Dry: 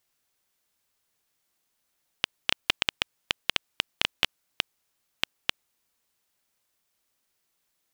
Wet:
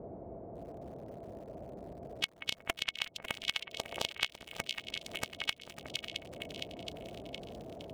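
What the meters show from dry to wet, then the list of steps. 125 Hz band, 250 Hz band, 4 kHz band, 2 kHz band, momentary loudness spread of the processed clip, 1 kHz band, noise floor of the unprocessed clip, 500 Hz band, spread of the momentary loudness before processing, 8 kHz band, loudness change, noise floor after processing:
+2.5 dB, +2.0 dB, −6.5 dB, −6.5 dB, 12 LU, −4.5 dB, −77 dBFS, +3.5 dB, 6 LU, −2.5 dB, −9.5 dB, −59 dBFS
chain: spectral dynamics exaggerated over time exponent 3
high-shelf EQ 9,600 Hz −9.5 dB
echo with a time of its own for lows and highs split 2,300 Hz, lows 182 ms, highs 463 ms, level −12 dB
all-pass phaser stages 2, 1.6 Hz, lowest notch 220–4,800 Hz
high-shelf EQ 2,100 Hz +7.5 dB
noise in a band 45–590 Hz −62 dBFS
hollow resonant body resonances 670/2,200 Hz, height 11 dB, ringing for 45 ms
downward compressor 4 to 1, threshold −49 dBFS, peak gain reduction 25.5 dB
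gain on a spectral selection 0:03.58–0:04.11, 330–1,200 Hz +6 dB
feedback echo at a low word length 551 ms, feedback 55%, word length 10 bits, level −14 dB
level +14 dB

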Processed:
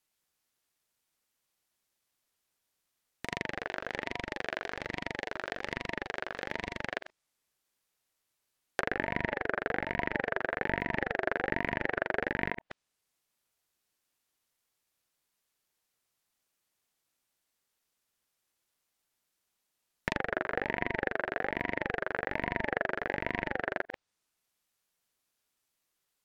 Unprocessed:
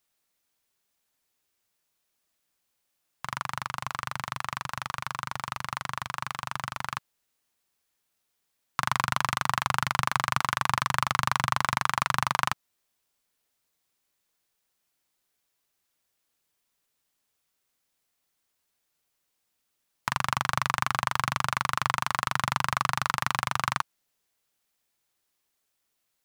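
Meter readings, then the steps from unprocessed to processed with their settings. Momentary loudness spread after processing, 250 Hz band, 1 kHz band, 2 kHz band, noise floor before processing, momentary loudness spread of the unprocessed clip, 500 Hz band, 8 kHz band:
6 LU, +3.0 dB, −10.5 dB, −2.0 dB, −78 dBFS, 8 LU, +8.5 dB, below −20 dB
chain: delay that plays each chunk backwards 106 ms, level −11.5 dB
treble cut that deepens with the level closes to 1,300 Hz, closed at −26 dBFS
ring modulator whose carrier an LFO sweeps 670 Hz, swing 25%, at 1.2 Hz

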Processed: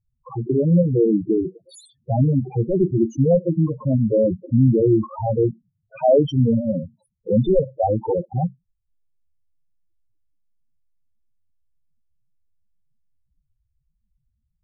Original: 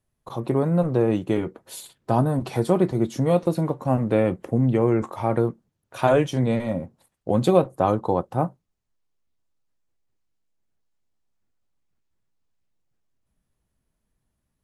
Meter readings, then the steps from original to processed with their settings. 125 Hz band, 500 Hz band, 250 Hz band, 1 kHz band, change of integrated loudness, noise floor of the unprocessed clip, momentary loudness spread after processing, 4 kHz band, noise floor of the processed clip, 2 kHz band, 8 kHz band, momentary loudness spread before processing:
+4.0 dB, +2.5 dB, +3.5 dB, −3.0 dB, +3.0 dB, −78 dBFS, 9 LU, −3.5 dB, −74 dBFS, below −15 dB, can't be measured, 11 LU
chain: wavefolder on the positive side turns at −13 dBFS
spectral peaks only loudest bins 4
buffer that repeats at 0:11.39, samples 512
level +6.5 dB

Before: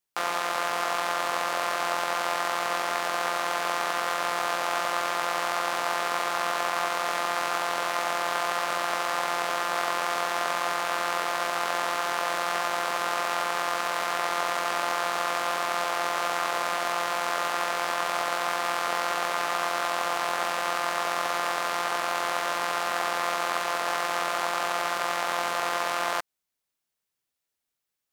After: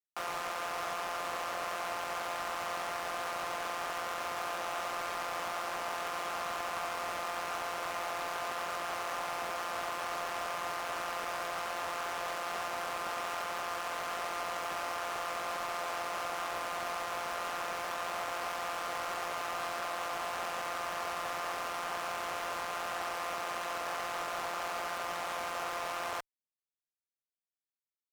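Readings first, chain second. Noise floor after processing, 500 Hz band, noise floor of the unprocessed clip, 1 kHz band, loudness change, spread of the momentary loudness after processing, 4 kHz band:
below −85 dBFS, −8.0 dB, −84 dBFS, −9.0 dB, −9.0 dB, 0 LU, −10.0 dB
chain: soft clipping −25.5 dBFS, distortion −7 dB
harmonic generator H 7 −18 dB, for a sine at −25.5 dBFS
level −4 dB

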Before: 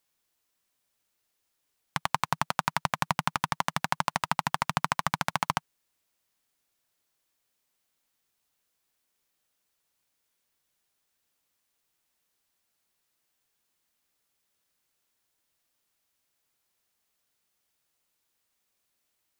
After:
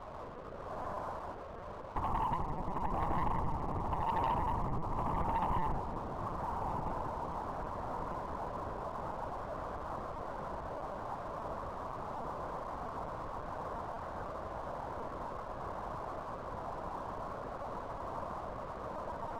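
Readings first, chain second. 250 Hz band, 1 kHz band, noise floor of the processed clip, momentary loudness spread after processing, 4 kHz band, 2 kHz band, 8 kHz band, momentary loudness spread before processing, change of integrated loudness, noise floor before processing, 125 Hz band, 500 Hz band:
+1.0 dB, −2.0 dB, −45 dBFS, 8 LU, −18.0 dB, −13.0 dB, below −20 dB, 2 LU, −9.5 dB, −79 dBFS, +1.0 dB, +6.0 dB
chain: spike at every zero crossing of −19 dBFS
Butterworth low-pass 1,000 Hz 36 dB per octave
reversed playback
downward compressor 5 to 1, threshold −46 dBFS, peak gain reduction 19.5 dB
reversed playback
rotating-speaker cabinet horn 0.9 Hz, later 7.5 Hz, at 0:06.54
on a send: feedback delay with all-pass diffusion 1,381 ms, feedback 56%, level −8 dB
on the sum: reverb whose tail is shaped and stops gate 230 ms flat, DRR −5.5 dB
linear-prediction vocoder at 8 kHz pitch kept
leveller curve on the samples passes 2
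level +7 dB

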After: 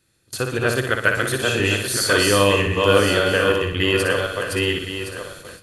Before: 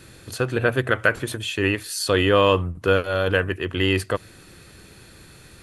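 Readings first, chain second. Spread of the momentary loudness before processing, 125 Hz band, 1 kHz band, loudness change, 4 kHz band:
10 LU, +1.5 dB, +2.5 dB, +3.0 dB, +6.0 dB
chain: feedback delay that plays each chunk backwards 533 ms, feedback 43%, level −1.5 dB
on a send: flutter between parallel walls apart 10.3 metres, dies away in 0.57 s
on the sum: noise gate with hold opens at −25 dBFS
high-shelf EQ 3,100 Hz +7 dB
level −1.5 dB

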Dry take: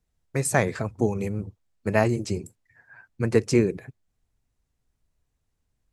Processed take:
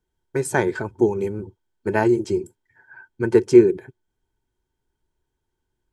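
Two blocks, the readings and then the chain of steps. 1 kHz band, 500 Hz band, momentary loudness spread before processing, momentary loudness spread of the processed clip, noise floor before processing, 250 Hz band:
+3.0 dB, +7.0 dB, 12 LU, 15 LU, −77 dBFS, +6.0 dB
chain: hollow resonant body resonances 370/900/1,500/3,200 Hz, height 16 dB, ringing for 45 ms
level −3.5 dB

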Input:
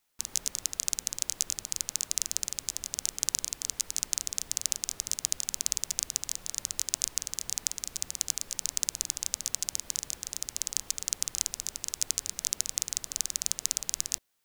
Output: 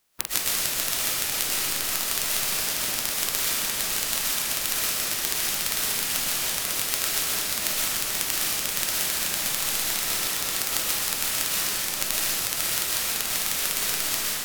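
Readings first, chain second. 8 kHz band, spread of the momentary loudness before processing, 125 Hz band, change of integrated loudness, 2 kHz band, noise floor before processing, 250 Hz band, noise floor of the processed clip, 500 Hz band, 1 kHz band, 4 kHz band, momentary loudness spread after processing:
+3.5 dB, 4 LU, +10.0 dB, +7.5 dB, +18.0 dB, −53 dBFS, +14.0 dB, −29 dBFS, +16.5 dB, +18.5 dB, +9.0 dB, 1 LU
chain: ceiling on every frequency bin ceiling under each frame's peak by 22 dB
comb and all-pass reverb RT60 2.3 s, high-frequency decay 0.95×, pre-delay 85 ms, DRR −9 dB
speech leveller 0.5 s
level −1 dB

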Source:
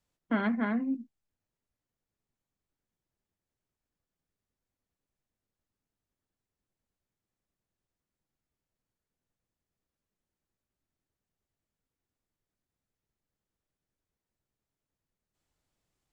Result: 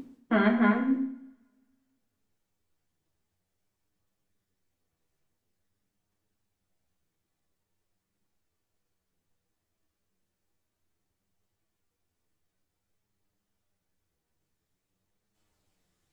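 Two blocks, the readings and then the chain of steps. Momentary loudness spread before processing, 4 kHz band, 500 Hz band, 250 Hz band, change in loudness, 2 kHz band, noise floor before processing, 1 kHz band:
6 LU, +7.0 dB, +8.0 dB, +5.0 dB, +5.5 dB, +6.5 dB, below −85 dBFS, +7.0 dB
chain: multi-voice chorus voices 2, 0.49 Hz, delay 11 ms, depth 1.6 ms
backwards echo 942 ms −13.5 dB
coupled-rooms reverb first 0.71 s, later 1.9 s, from −27 dB, DRR 4.5 dB
level +8 dB

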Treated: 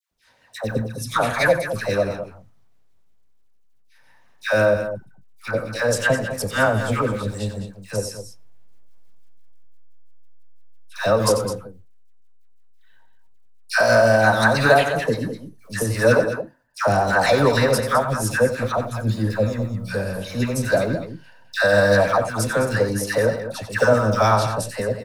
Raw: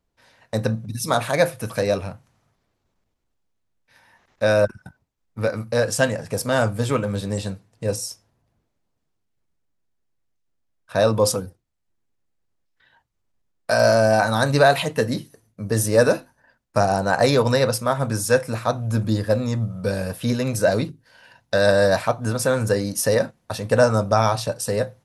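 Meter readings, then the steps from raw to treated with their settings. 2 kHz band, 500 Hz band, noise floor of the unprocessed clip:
+5.0 dB, +0.5 dB, −74 dBFS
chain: two-band tremolo in antiphase 6 Hz, depth 50%, crossover 470 Hz
dynamic equaliser 1,600 Hz, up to +6 dB, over −39 dBFS, Q 1
in parallel at −6.5 dB: slack as between gear wheels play −15.5 dBFS
on the sum: log-companded quantiser 8 bits
all-pass dispersion lows, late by 113 ms, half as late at 1,100 Hz
on a send: loudspeakers that aren't time-aligned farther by 31 metres −11 dB, 72 metres −11 dB
on the sum: level −1 dB

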